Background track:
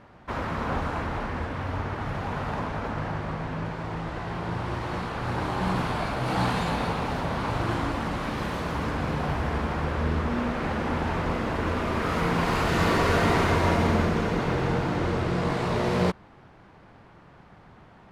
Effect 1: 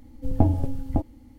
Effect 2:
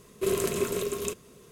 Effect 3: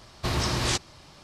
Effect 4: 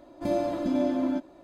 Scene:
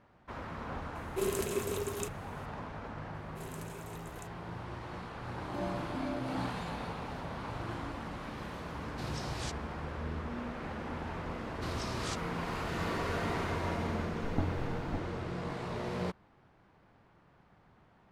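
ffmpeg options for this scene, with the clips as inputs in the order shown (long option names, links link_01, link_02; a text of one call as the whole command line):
ffmpeg -i bed.wav -i cue0.wav -i cue1.wav -i cue2.wav -i cue3.wav -filter_complex "[2:a]asplit=2[link_01][link_02];[3:a]asplit=2[link_03][link_04];[0:a]volume=-12dB[link_05];[link_02]highpass=frequency=700:poles=1[link_06];[link_01]atrim=end=1.51,asetpts=PTS-STARTPTS,volume=-6dB,afade=type=in:duration=0.004:curve=hsin,afade=type=out:start_time=1.506:duration=0.004:curve=hsin,adelay=950[link_07];[link_06]atrim=end=1.51,asetpts=PTS-STARTPTS,volume=-18dB,afade=type=in:duration=0.004:curve=hsin,afade=type=out:start_time=1.506:duration=0.004:curve=hsin,adelay=3140[link_08];[4:a]atrim=end=1.43,asetpts=PTS-STARTPTS,volume=-12.5dB,afade=type=in:duration=0.004:curve=hsin,afade=type=out:start_time=1.426:duration=0.004:curve=hsin,adelay=233289S[link_09];[link_03]atrim=end=1.23,asetpts=PTS-STARTPTS,volume=-15.5dB,afade=type=in:duration=0.004:curve=hsin,afade=type=out:start_time=1.226:duration=0.004:curve=hsin,adelay=385434S[link_10];[link_04]atrim=end=1.23,asetpts=PTS-STARTPTS,volume=-14dB,afade=type=in:duration=0.004:curve=hsin,afade=type=out:start_time=1.226:duration=0.004:curve=hsin,adelay=501858S[link_11];[1:a]atrim=end=1.38,asetpts=PTS-STARTPTS,volume=-14dB,afade=type=in:duration=0.004:curve=hsin,afade=type=out:start_time=1.376:duration=0.004:curve=hsin,adelay=13980[link_12];[link_05][link_07][link_08][link_09][link_10][link_11][link_12]amix=inputs=7:normalize=0" out.wav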